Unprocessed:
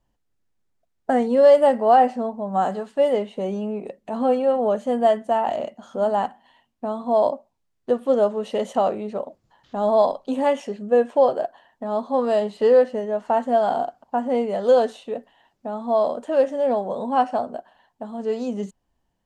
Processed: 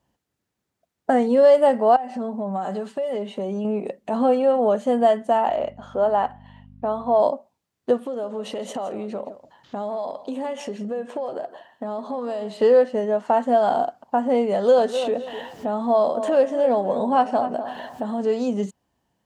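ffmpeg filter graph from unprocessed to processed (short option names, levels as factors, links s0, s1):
-filter_complex "[0:a]asettb=1/sr,asplit=3[s0][s1][s2];[s0]atrim=end=1.964[s3];[s1]atrim=start=1.96:end=3.65,asetpts=PTS-STARTPTS,afade=t=in:d=0.004:c=qsin,afade=t=out:st=1.686:d=0.004:c=qsin,aecho=1:1:5.1:0.49,atrim=end_sample=74529,acompressor=threshold=0.0355:ratio=5:attack=3.2:release=140:knee=1:detection=peak[s4];[s2]atrim=start=3.646[s5];[s3][s4]acrossfade=d=0.004:c1=hsin:c2=qsin[s6];[s6][s5]acrossfade=d=0.004:c1=qsin:c2=hsin,asettb=1/sr,asplit=3[s7][s8][s9];[s7]atrim=end=5.484[s10];[s8]atrim=start=5.48:end=7.2,asetpts=PTS-STARTPTS,afade=t=in:d=0.004:c=qsin,afade=t=out:st=1.716:d=0.004:c=qsin,bass=f=250:g=-10,treble=f=4000:g=-12,aeval=exprs='val(0)+0.00562*(sin(2*PI*50*n/s)+sin(2*PI*2*50*n/s)/2+sin(2*PI*3*50*n/s)/3+sin(2*PI*4*50*n/s)/4+sin(2*PI*5*50*n/s)/5)':c=same[s11];[s9]atrim=start=7.196[s12];[s10][s11]acrossfade=d=0.004:c1=hsin:c2=qsin[s13];[s13][s12]acrossfade=d=0.004:c1=qsin:c2=hsin,asettb=1/sr,asplit=3[s14][s15][s16];[s14]atrim=end=8.004[s17];[s15]atrim=start=8:end=12.61,asetpts=PTS-STARTPTS,afade=t=in:d=0.004:c=qsin,afade=t=out:st=4.606:d=0.004:c=qsin,acompressor=threshold=0.0316:ratio=8:attack=3.2:release=140:knee=1:detection=peak,aecho=1:1:165:0.178,atrim=end_sample=203301[s18];[s16]atrim=start=12.606[s19];[s17][s18]acrossfade=d=0.004:c1=hsin:c2=qsin[s20];[s20][s19]acrossfade=d=0.004:c1=qsin:c2=hsin,asettb=1/sr,asplit=3[s21][s22][s23];[s21]atrim=end=14.524[s24];[s22]atrim=start=14.52:end=18.27,asetpts=PTS-STARTPTS,afade=t=in:d=0.004:c=qsin,afade=t=out:st=3.746:d=0.004:c=qsin,acompressor=mode=upward:threshold=0.0562:ratio=2.5:attack=3.2:release=140:knee=2.83:detection=peak,asplit=2[s25][s26];[s26]adelay=253,lowpass=f=2500:p=1,volume=0.237,asplit=2[s27][s28];[s28]adelay=253,lowpass=f=2500:p=1,volume=0.29,asplit=2[s29][s30];[s30]adelay=253,lowpass=f=2500:p=1,volume=0.29[s31];[s25][s27][s29][s31]amix=inputs=4:normalize=0,atrim=end_sample=165375[s32];[s23]atrim=start=18.266[s33];[s24][s32]acrossfade=d=0.004:c1=hsin:c2=qsin[s34];[s34][s33]acrossfade=d=0.004:c1=qsin:c2=hsin,acompressor=threshold=0.0562:ratio=1.5,highpass=90,volume=1.68"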